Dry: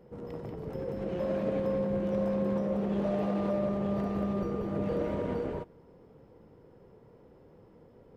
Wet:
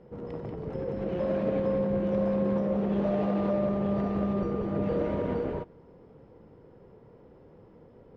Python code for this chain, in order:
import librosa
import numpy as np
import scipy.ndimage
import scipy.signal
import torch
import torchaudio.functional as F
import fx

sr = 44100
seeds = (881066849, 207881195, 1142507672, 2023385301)

y = fx.air_absorb(x, sr, metres=110.0)
y = F.gain(torch.from_numpy(y), 3.0).numpy()